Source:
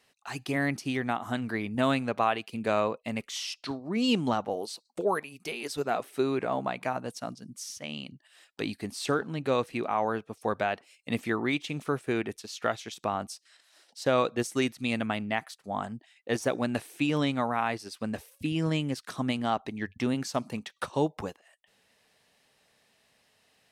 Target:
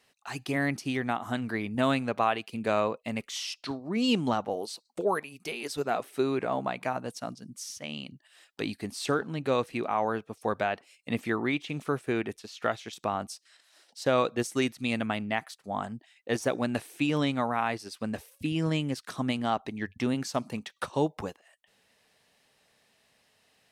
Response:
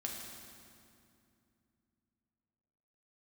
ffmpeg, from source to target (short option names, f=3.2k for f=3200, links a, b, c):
-filter_complex "[0:a]asettb=1/sr,asplit=3[a][b][c];[a]atrim=end=10.674[d];[b]atrim=start=10.67:end=12.93,asetpts=PTS-STARTPTS,afade=t=in:d=0.004:c=qsin,afade=t=out:st=2.256:d=0.004:c=qsin,acrossover=split=3700[e][f];[f]acompressor=threshold=-48dB:ratio=4:attack=1:release=60[g];[e][g]amix=inputs=2:normalize=0[h];[c]atrim=start=12.926[i];[d][h]acrossfade=d=0.004:c1=hsin:c2=qsin[j];[j][i]acrossfade=d=0.004:c1=qsin:c2=hsin"